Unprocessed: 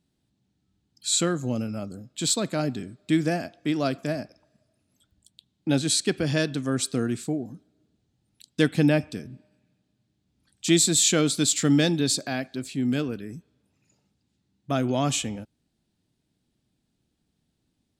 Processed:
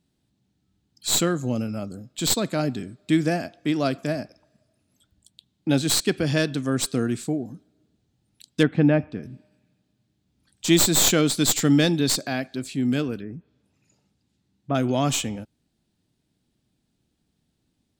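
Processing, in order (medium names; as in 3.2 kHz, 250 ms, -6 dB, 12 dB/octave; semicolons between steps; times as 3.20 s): tracing distortion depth 0.043 ms; 8.63–9.23 s: low-pass 1.9 kHz 12 dB/octave; 13.19–14.75 s: low-pass that closes with the level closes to 1.5 kHz, closed at -34.5 dBFS; trim +2 dB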